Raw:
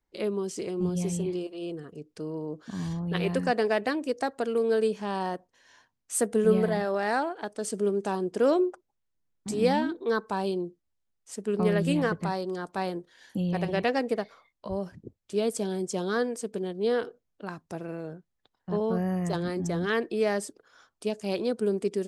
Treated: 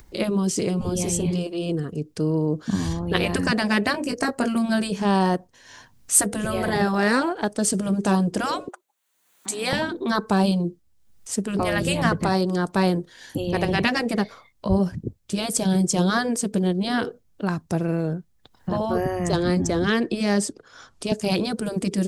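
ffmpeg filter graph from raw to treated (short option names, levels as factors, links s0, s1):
-filter_complex "[0:a]asettb=1/sr,asplit=3[s0][s1][s2];[s0]atrim=end=3.924[s3];[s1]atrim=start=3.92:end=4.56,asetpts=PTS-STARTPTS,afade=t=in:d=0.004:c=qsin,afade=t=out:st=0.636:d=0.004:c=qsin,equalizer=f=3600:w=6:g=-11,asplit=2[s4][s5];[s5]adelay=20,volume=0.447[s6];[s4][s6]amix=inputs=2:normalize=0,atrim=end_sample=28224[s7];[s2]atrim=start=4.556[s8];[s3][s7]acrossfade=d=0.004:c1=hsin:c2=qsin[s9];[s9][s8]acrossfade=d=0.004:c1=qsin:c2=hsin,asettb=1/sr,asplit=3[s10][s11][s12];[s10]atrim=end=8.684[s13];[s11]atrim=start=8.68:end=9.73,asetpts=PTS-STARTPTS,afade=t=in:d=0.004:c=qsin,afade=t=out:st=1.046:d=0.004:c=qsin,highpass=790,equalizer=f=5200:t=o:w=0.24:g=-10.5[s14];[s12]atrim=start=9.726[s15];[s13][s14]acrossfade=d=0.004:c1=hsin:c2=qsin[s16];[s16][s15]acrossfade=d=0.004:c1=qsin:c2=hsin,asettb=1/sr,asplit=3[s17][s18][s19];[s17]atrim=end=19.064[s20];[s18]atrim=start=19.06:end=21.12,asetpts=PTS-STARTPTS,afade=t=in:d=0.004:c=qsin,afade=t=out:st=2.056:d=0.004:c=qsin,lowpass=8700,acrossover=split=210|3000[s21][s22][s23];[s22]acompressor=threshold=0.0398:ratio=6:attack=3.2:release=140:knee=2.83:detection=peak[s24];[s21][s24][s23]amix=inputs=3:normalize=0[s25];[s19]atrim=start=21.116[s26];[s20][s25]acrossfade=d=0.004:c1=hsin:c2=qsin[s27];[s27][s26]acrossfade=d=0.004:c1=qsin:c2=hsin,afftfilt=real='re*lt(hypot(re,im),0.251)':imag='im*lt(hypot(re,im),0.251)':win_size=1024:overlap=0.75,bass=f=250:g=9,treble=f=4000:g=4,acompressor=mode=upward:threshold=0.00501:ratio=2.5,volume=2.82"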